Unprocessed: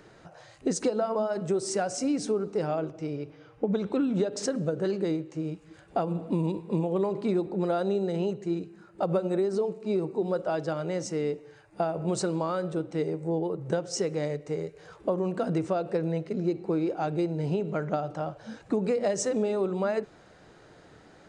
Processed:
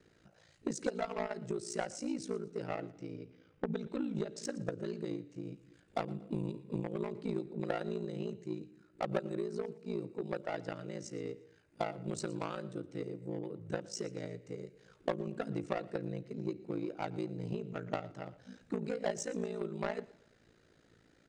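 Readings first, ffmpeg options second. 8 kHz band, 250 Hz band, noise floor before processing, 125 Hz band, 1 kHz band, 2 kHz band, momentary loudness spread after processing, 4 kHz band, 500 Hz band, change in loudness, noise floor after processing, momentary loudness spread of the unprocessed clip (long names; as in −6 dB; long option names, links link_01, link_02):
−10.0 dB, −10.0 dB, −55 dBFS, −9.5 dB, −9.0 dB, −4.5 dB, 8 LU, −8.0 dB, −11.0 dB, −10.0 dB, −67 dBFS, 7 LU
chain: -filter_complex "[0:a]acrossover=split=570|1200[link_01][link_02][link_03];[link_02]acrusher=bits=4:mix=0:aa=0.5[link_04];[link_01][link_04][link_03]amix=inputs=3:normalize=0,aeval=exprs='val(0)*sin(2*PI*28*n/s)':channel_layout=same,aecho=1:1:117|234|351:0.112|0.0404|0.0145,aeval=exprs='0.178*(cos(1*acos(clip(val(0)/0.178,-1,1)))-cos(1*PI/2))+0.0282*(cos(3*acos(clip(val(0)/0.178,-1,1)))-cos(3*PI/2))':channel_layout=same,volume=-2dB"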